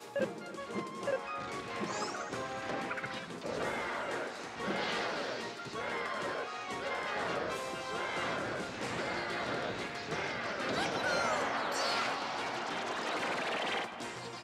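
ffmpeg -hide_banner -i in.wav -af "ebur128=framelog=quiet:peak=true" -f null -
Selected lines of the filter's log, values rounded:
Integrated loudness:
  I:         -36.0 LUFS
  Threshold: -46.0 LUFS
Loudness range:
  LRA:         4.0 LU
  Threshold: -55.9 LUFS
  LRA low:   -37.8 LUFS
  LRA high:  -33.8 LUFS
True peak:
  Peak:      -23.0 dBFS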